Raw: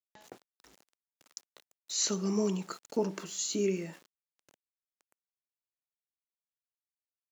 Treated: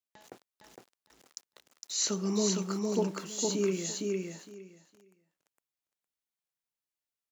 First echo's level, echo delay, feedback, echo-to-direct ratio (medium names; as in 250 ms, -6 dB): -3.0 dB, 460 ms, 17%, -3.0 dB